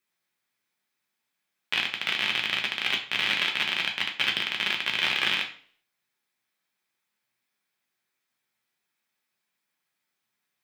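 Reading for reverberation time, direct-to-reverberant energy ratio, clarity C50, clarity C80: 0.50 s, 1.0 dB, 10.5 dB, 13.5 dB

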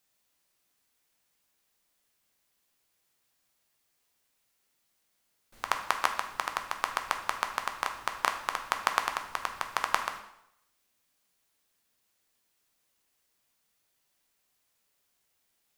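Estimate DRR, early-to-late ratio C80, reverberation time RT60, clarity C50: 4.5 dB, 11.0 dB, 0.75 s, 8.5 dB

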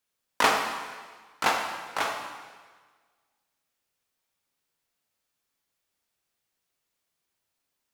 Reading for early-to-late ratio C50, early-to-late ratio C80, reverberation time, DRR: 4.0 dB, 6.0 dB, 1.5 s, 1.5 dB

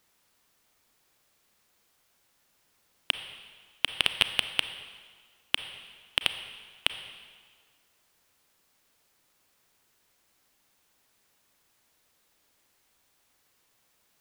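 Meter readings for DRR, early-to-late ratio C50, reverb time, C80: 9.5 dB, 10.5 dB, 1.7 s, 11.5 dB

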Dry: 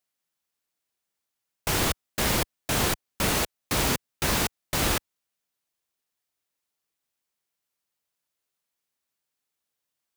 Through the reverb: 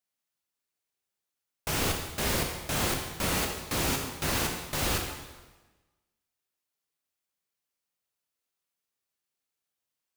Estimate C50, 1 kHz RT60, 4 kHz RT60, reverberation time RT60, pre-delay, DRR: 4.5 dB, 1.2 s, 1.1 s, 1.2 s, 8 ms, 1.5 dB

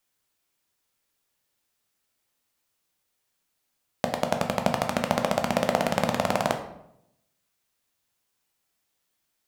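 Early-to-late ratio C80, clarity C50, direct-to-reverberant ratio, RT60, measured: 12.0 dB, 9.0 dB, 4.5 dB, 0.80 s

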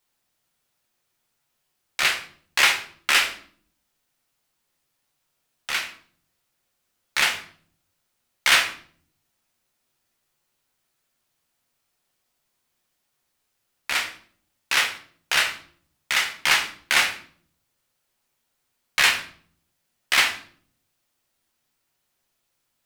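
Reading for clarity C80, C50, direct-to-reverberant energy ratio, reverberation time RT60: 15.0 dB, 10.5 dB, 2.5 dB, 0.55 s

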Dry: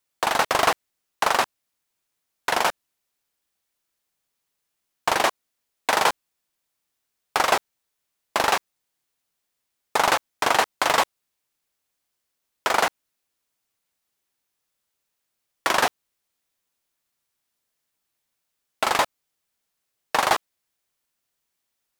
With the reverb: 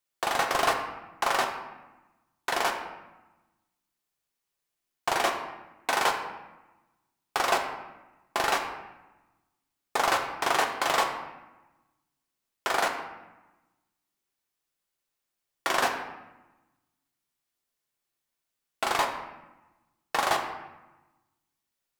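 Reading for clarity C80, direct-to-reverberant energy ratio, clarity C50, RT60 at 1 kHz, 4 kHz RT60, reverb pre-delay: 8.5 dB, 2.5 dB, 6.5 dB, 1.1 s, 0.70 s, 3 ms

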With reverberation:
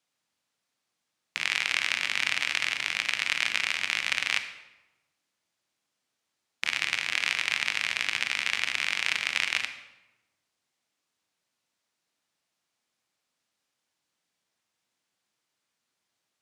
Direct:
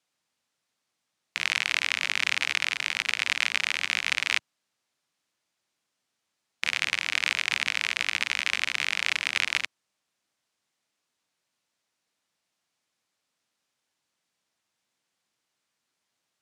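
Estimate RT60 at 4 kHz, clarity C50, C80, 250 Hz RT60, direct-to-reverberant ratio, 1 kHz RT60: 0.75 s, 10.0 dB, 12.0 dB, 1.2 s, 8.0 dB, 0.95 s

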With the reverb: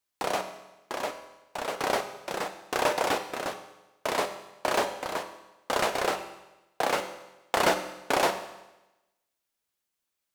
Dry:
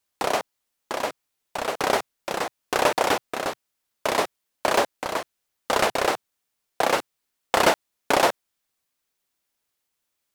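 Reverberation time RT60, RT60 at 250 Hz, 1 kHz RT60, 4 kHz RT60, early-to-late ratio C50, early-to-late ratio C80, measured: 1.0 s, 1.0 s, 1.0 s, 1.0 s, 10.0 dB, 12.0 dB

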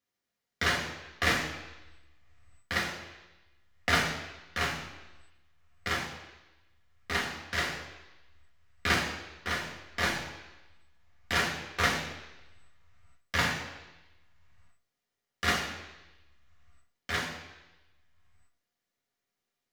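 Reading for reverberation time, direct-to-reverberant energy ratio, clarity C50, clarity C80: 1.0 s, −1.5 dB, 5.5 dB, 8.0 dB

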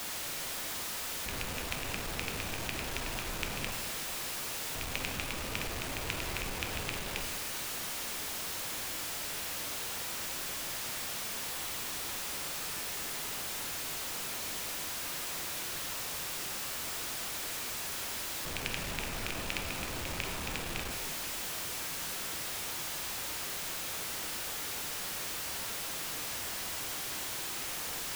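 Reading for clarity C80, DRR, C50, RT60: 6.5 dB, 3.5 dB, 5.5 dB, 2.0 s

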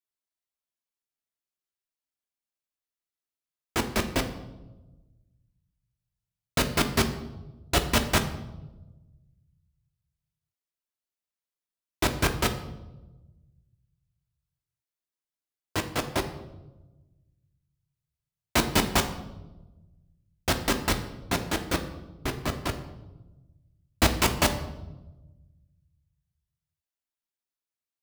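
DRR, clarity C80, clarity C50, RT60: 5.5 dB, 13.0 dB, 10.5 dB, 1.1 s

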